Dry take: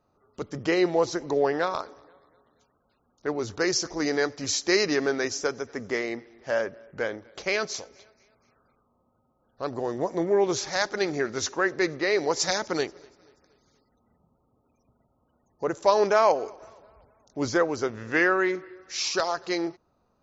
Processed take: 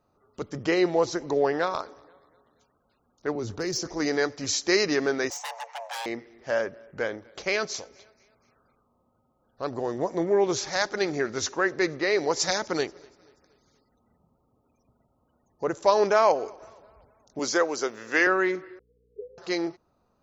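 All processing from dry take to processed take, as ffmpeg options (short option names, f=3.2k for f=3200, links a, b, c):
-filter_complex "[0:a]asettb=1/sr,asplit=3[a][b][c];[a]atrim=end=3.354[d];[b]atrim=start=3.35:end=3.89,asetpts=PTS-STARTPTS,afade=t=in:d=0.004:c=qsin,afade=t=out:st=0.536:d=0.004:c=qsin,tiltshelf=f=800:g=4,acrossover=split=190|3000[e][f][g];[f]acompressor=threshold=-29dB:ratio=4:attack=3.2:release=140:knee=2.83:detection=peak[h];[e][h][g]amix=inputs=3:normalize=0,asoftclip=type=hard:threshold=-22.5dB[i];[c]atrim=start=3.886[j];[d][i]acrossfade=d=0.004:c1=hsin:c2=qsin[k];[k][j]acrossfade=d=0.004:c1=qsin:c2=hsin,asettb=1/sr,asplit=3[l][m][n];[l]atrim=end=5.304[o];[m]atrim=start=5.3:end=6.06,asetpts=PTS-STARTPTS,afade=t=in:d=0.004:c=qsin,afade=t=out:st=0.756:d=0.004:c=qsin,adynamicsmooth=sensitivity=4:basefreq=5.9k,aeval=exprs='0.0355*(abs(mod(val(0)/0.0355+3,4)-2)-1)':c=same,afreqshift=450[p];[n]atrim=start=6.056[q];[o][p]acrossfade=d=0.004:c1=hsin:c2=qsin[r];[r][q]acrossfade=d=0.004:c1=qsin:c2=hsin,asettb=1/sr,asplit=3[s][t][u];[s]atrim=end=17.394[v];[t]atrim=start=17.39:end=18.27,asetpts=PTS-STARTPTS,afade=t=in:d=0.004:c=qsin,afade=t=out:st=0.876:d=0.004:c=qsin,highpass=310,aemphasis=mode=production:type=50kf[w];[u]atrim=start=18.266[x];[v][w]acrossfade=d=0.004:c1=hsin:c2=qsin[y];[y][x]acrossfade=d=0.004:c1=qsin:c2=hsin,asettb=1/sr,asplit=3[z][aa][ab];[z]atrim=end=18.794[ac];[aa]atrim=start=18.79:end=19.38,asetpts=PTS-STARTPTS,afade=t=in:d=0.004:c=qsin,afade=t=out:st=0.586:d=0.004:c=qsin,asuperpass=centerf=450:order=12:qfactor=4.9,aeval=exprs='val(0)+0.000447*(sin(2*PI*60*n/s)+sin(2*PI*2*60*n/s)/2+sin(2*PI*3*60*n/s)/3+sin(2*PI*4*60*n/s)/4+sin(2*PI*5*60*n/s)/5)':c=same[ad];[ab]atrim=start=19.376[ae];[ac][ad]acrossfade=d=0.004:c1=hsin:c2=qsin[af];[af][ae]acrossfade=d=0.004:c1=qsin:c2=hsin"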